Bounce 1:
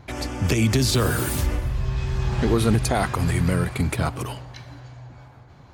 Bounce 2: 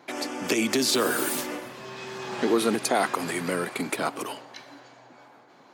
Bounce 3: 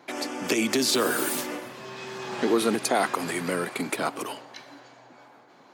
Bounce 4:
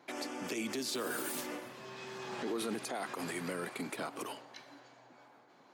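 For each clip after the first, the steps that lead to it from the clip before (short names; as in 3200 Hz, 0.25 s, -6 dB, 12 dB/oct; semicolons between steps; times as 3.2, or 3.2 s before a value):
HPF 250 Hz 24 dB/oct
HPF 75 Hz
limiter -20 dBFS, peak gain reduction 9.5 dB; gain -8 dB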